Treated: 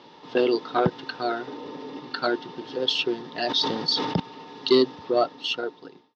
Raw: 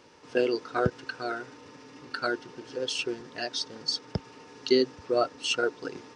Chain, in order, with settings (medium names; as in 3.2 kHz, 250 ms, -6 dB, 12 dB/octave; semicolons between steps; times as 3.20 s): fade out at the end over 1.22 s; 1.47–2.00 s: peaking EQ 420 Hz +9.5 dB 1.4 oct; in parallel at -5.5 dB: sine folder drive 7 dB, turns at -9 dBFS; on the sum: cabinet simulation 160–4400 Hz, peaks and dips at 170 Hz +5 dB, 500 Hz -4 dB, 850 Hz +5 dB, 1.5 kHz -7 dB, 2.4 kHz -6 dB, 3.6 kHz +7 dB; 3.40–4.20 s: decay stretcher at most 40 dB/s; trim -2 dB